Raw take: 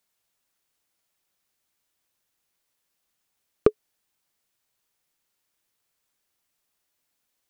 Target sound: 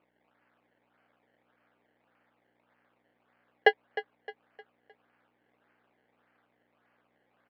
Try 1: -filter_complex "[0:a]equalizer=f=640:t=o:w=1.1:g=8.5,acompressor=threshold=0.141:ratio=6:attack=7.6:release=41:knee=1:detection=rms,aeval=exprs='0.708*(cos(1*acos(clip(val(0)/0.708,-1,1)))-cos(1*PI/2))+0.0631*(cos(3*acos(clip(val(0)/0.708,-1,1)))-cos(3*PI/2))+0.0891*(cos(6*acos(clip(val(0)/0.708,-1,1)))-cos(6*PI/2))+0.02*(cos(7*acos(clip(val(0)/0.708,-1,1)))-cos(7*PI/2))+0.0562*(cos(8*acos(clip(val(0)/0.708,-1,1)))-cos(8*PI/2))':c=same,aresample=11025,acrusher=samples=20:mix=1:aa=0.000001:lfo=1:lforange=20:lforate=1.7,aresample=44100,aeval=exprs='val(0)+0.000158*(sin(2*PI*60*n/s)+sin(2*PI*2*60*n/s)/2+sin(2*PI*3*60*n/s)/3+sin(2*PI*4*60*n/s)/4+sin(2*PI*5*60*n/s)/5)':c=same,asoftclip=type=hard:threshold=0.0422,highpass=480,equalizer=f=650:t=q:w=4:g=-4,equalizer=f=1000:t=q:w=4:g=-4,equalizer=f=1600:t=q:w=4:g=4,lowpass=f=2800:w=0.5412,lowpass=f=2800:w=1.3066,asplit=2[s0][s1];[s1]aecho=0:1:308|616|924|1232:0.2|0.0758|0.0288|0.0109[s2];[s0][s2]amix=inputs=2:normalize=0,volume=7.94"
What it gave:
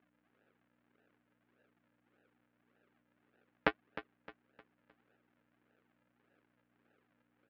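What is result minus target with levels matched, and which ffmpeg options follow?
decimation with a swept rate: distortion +22 dB
-filter_complex "[0:a]equalizer=f=640:t=o:w=1.1:g=8.5,acompressor=threshold=0.141:ratio=6:attack=7.6:release=41:knee=1:detection=rms,aeval=exprs='0.708*(cos(1*acos(clip(val(0)/0.708,-1,1)))-cos(1*PI/2))+0.0631*(cos(3*acos(clip(val(0)/0.708,-1,1)))-cos(3*PI/2))+0.0891*(cos(6*acos(clip(val(0)/0.708,-1,1)))-cos(6*PI/2))+0.02*(cos(7*acos(clip(val(0)/0.708,-1,1)))-cos(7*PI/2))+0.0562*(cos(8*acos(clip(val(0)/0.708,-1,1)))-cos(8*PI/2))':c=same,aresample=11025,acrusher=samples=6:mix=1:aa=0.000001:lfo=1:lforange=6:lforate=1.7,aresample=44100,aeval=exprs='val(0)+0.000158*(sin(2*PI*60*n/s)+sin(2*PI*2*60*n/s)/2+sin(2*PI*3*60*n/s)/3+sin(2*PI*4*60*n/s)/4+sin(2*PI*5*60*n/s)/5)':c=same,asoftclip=type=hard:threshold=0.0422,highpass=480,equalizer=f=650:t=q:w=4:g=-4,equalizer=f=1000:t=q:w=4:g=-4,equalizer=f=1600:t=q:w=4:g=4,lowpass=f=2800:w=0.5412,lowpass=f=2800:w=1.3066,asplit=2[s0][s1];[s1]aecho=0:1:308|616|924|1232:0.2|0.0758|0.0288|0.0109[s2];[s0][s2]amix=inputs=2:normalize=0,volume=7.94"

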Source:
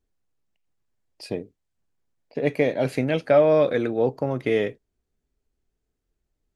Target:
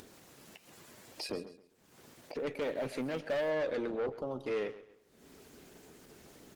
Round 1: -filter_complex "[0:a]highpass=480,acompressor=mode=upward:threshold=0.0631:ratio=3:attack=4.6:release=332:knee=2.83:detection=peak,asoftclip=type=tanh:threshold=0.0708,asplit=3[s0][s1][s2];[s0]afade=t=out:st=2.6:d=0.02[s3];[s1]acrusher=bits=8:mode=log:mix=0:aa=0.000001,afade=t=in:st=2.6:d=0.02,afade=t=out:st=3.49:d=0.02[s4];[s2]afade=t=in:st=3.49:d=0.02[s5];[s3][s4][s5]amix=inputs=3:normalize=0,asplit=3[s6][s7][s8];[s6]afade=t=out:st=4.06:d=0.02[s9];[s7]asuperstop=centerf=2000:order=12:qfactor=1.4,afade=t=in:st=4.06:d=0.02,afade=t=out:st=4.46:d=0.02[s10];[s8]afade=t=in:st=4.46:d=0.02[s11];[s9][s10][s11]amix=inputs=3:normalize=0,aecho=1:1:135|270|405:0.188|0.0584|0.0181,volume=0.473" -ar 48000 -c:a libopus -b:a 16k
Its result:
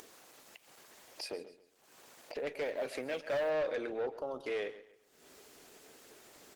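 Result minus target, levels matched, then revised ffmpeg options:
250 Hz band -5.5 dB
-filter_complex "[0:a]highpass=190,acompressor=mode=upward:threshold=0.0631:ratio=3:attack=4.6:release=332:knee=2.83:detection=peak,asoftclip=type=tanh:threshold=0.0708,asplit=3[s0][s1][s2];[s0]afade=t=out:st=2.6:d=0.02[s3];[s1]acrusher=bits=8:mode=log:mix=0:aa=0.000001,afade=t=in:st=2.6:d=0.02,afade=t=out:st=3.49:d=0.02[s4];[s2]afade=t=in:st=3.49:d=0.02[s5];[s3][s4][s5]amix=inputs=3:normalize=0,asplit=3[s6][s7][s8];[s6]afade=t=out:st=4.06:d=0.02[s9];[s7]asuperstop=centerf=2000:order=12:qfactor=1.4,afade=t=in:st=4.06:d=0.02,afade=t=out:st=4.46:d=0.02[s10];[s8]afade=t=in:st=4.46:d=0.02[s11];[s9][s10][s11]amix=inputs=3:normalize=0,aecho=1:1:135|270|405:0.188|0.0584|0.0181,volume=0.473" -ar 48000 -c:a libopus -b:a 16k

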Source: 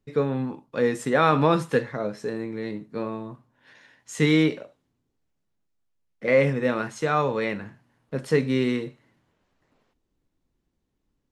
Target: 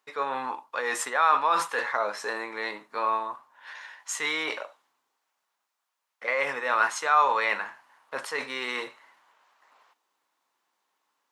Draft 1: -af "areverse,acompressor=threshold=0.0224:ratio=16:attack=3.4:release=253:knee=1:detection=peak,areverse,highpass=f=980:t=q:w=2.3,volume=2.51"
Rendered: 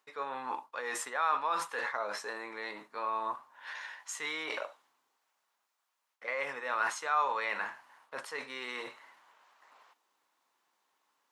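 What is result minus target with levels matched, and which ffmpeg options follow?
compression: peak gain reduction +8.5 dB
-af "areverse,acompressor=threshold=0.0631:ratio=16:attack=3.4:release=253:knee=1:detection=peak,areverse,highpass=f=980:t=q:w=2.3,volume=2.51"

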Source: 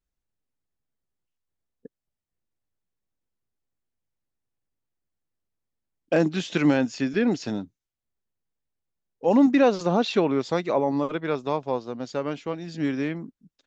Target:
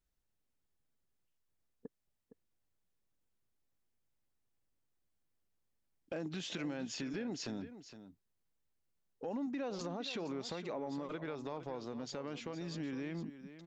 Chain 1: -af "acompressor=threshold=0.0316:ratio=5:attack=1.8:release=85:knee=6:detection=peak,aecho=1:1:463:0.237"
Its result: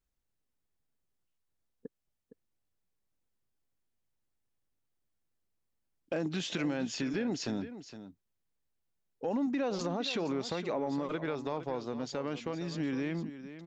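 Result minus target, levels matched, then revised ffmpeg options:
compression: peak gain reduction -7 dB
-af "acompressor=threshold=0.0112:ratio=5:attack=1.8:release=85:knee=6:detection=peak,aecho=1:1:463:0.237"

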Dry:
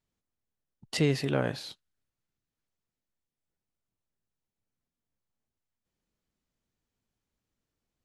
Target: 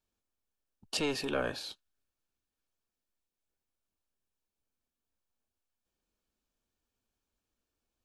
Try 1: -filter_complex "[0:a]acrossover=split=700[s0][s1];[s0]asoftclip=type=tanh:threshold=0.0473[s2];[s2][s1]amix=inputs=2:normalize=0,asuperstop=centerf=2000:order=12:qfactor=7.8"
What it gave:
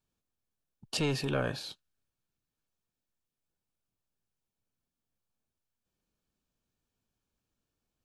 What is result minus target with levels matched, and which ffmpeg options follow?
125 Hz band +10.0 dB
-filter_complex "[0:a]acrossover=split=700[s0][s1];[s0]asoftclip=type=tanh:threshold=0.0473[s2];[s2][s1]amix=inputs=2:normalize=0,asuperstop=centerf=2000:order=12:qfactor=7.8,equalizer=f=140:w=2.3:g=-14.5"

